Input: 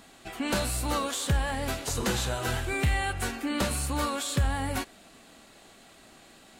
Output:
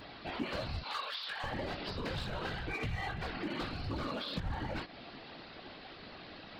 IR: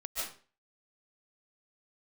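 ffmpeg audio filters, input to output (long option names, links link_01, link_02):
-filter_complex "[0:a]asettb=1/sr,asplit=3[link_01][link_02][link_03];[link_01]atrim=end=0.814[link_04];[link_02]atrim=start=0.81:end=1.44,asetpts=PTS-STARTPTS,afade=type=in:duration=0.004:curve=qsin,afade=type=out:start_time=0.626:duration=0.004:curve=qsin,highpass=1300[link_05];[link_03]atrim=start=1.436[link_06];[link_04][link_05]acrossfade=duration=0.004:curve1=hsin:curve2=qsin[link_07];[link_07][link_06]acrossfade=duration=0.004:curve1=qsin:curve2=hsin,acompressor=threshold=-34dB:ratio=6,flanger=delay=17.5:depth=2.1:speed=0.51,aresample=11025,aresample=44100,asoftclip=type=hard:threshold=-35.5dB,alimiter=level_in=16dB:limit=-24dB:level=0:latency=1:release=69,volume=-16dB,afftfilt=real='hypot(re,im)*cos(2*PI*random(0))':imag='hypot(re,im)*sin(2*PI*random(1))':win_size=512:overlap=0.75,volume=13.5dB"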